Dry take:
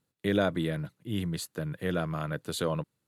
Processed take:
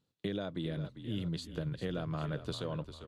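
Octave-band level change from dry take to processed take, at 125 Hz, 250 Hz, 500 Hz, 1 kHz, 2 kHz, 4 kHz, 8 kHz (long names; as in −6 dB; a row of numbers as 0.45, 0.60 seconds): −4.0, −6.0, −8.0, −9.0, −11.0, −5.0, −13.5 decibels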